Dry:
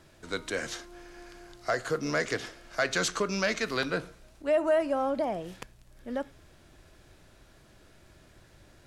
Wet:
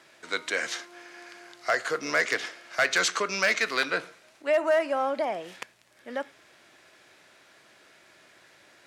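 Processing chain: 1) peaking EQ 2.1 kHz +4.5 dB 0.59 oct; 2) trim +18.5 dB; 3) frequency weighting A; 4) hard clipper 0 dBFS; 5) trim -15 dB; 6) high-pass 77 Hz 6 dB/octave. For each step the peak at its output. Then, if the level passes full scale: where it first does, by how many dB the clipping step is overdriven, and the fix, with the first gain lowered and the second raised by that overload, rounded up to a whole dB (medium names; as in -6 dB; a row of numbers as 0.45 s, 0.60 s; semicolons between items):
-12.5 dBFS, +6.0 dBFS, +6.0 dBFS, 0.0 dBFS, -15.0 dBFS, -14.5 dBFS; step 2, 6.0 dB; step 2 +12.5 dB, step 5 -9 dB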